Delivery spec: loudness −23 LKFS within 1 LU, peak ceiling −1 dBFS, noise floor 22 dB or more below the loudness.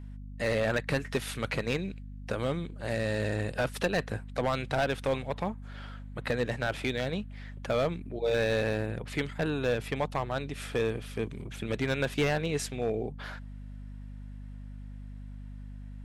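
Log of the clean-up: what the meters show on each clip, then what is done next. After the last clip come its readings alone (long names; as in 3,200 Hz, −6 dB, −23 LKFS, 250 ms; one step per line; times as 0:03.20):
share of clipped samples 0.8%; peaks flattened at −21.0 dBFS; mains hum 50 Hz; hum harmonics up to 250 Hz; level of the hum −40 dBFS; integrated loudness −31.5 LKFS; sample peak −21.0 dBFS; target loudness −23.0 LKFS
→ clipped peaks rebuilt −21 dBFS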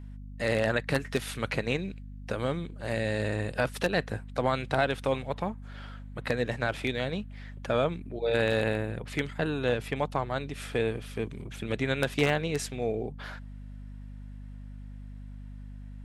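share of clipped samples 0.0%; mains hum 50 Hz; hum harmonics up to 200 Hz; level of the hum −40 dBFS
→ mains-hum notches 50/100/150/200 Hz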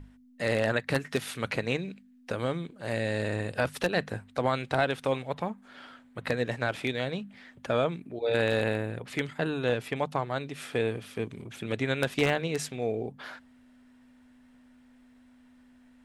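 mains hum none found; integrated loudness −30.5 LKFS; sample peak −12.0 dBFS; target loudness −23.0 LKFS
→ level +7.5 dB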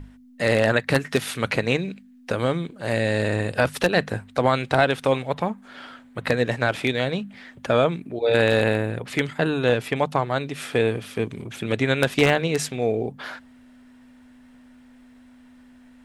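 integrated loudness −23.0 LKFS; sample peak −4.5 dBFS; background noise floor −50 dBFS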